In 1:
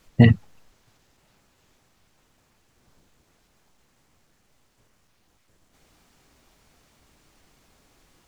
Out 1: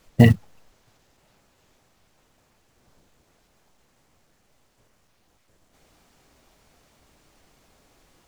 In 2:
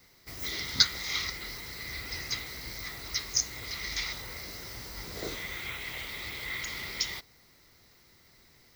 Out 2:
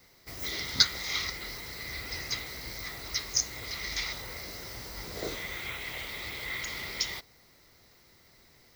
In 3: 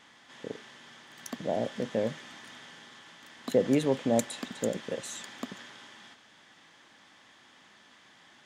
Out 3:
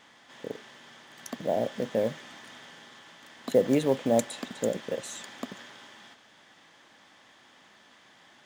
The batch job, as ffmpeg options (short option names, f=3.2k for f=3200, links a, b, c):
-af "acrusher=bits=7:mode=log:mix=0:aa=0.000001,equalizer=f=600:t=o:w=1.1:g=3.5"